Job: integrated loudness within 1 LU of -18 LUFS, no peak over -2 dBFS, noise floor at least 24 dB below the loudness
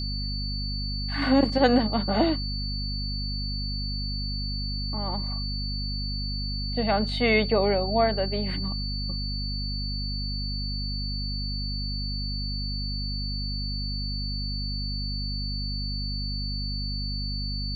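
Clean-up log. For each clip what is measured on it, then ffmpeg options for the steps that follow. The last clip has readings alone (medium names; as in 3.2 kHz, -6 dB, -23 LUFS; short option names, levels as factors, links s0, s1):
hum 50 Hz; highest harmonic 250 Hz; hum level -29 dBFS; steady tone 4.5 kHz; tone level -33 dBFS; loudness -28.0 LUFS; peak level -9.0 dBFS; loudness target -18.0 LUFS
-> -af "bandreject=f=50:t=h:w=4,bandreject=f=100:t=h:w=4,bandreject=f=150:t=h:w=4,bandreject=f=200:t=h:w=4,bandreject=f=250:t=h:w=4"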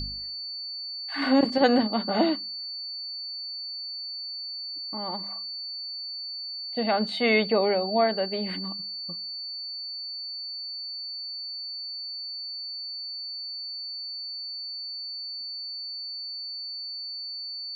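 hum not found; steady tone 4.5 kHz; tone level -33 dBFS
-> -af "bandreject=f=4500:w=30"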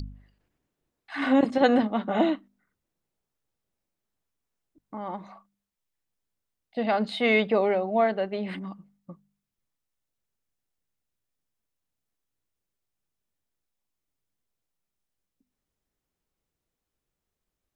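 steady tone not found; loudness -25.0 LUFS; peak level -9.5 dBFS; loudness target -18.0 LUFS
-> -af "volume=2.24"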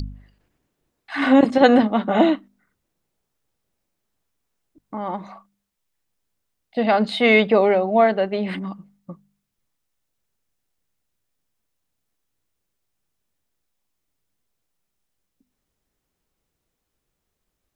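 loudness -18.0 LUFS; peak level -2.5 dBFS; noise floor -79 dBFS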